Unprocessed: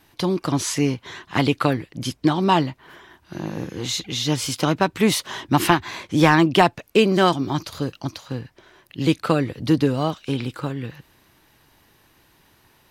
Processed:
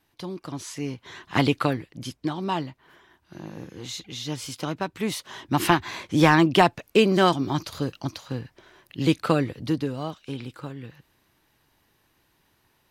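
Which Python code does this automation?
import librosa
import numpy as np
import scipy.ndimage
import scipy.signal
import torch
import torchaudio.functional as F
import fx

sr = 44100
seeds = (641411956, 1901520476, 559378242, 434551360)

y = fx.gain(x, sr, db=fx.line((0.73, -12.5), (1.38, -1.0), (2.23, -9.5), (5.26, -9.5), (5.75, -2.0), (9.4, -2.0), (9.85, -9.0)))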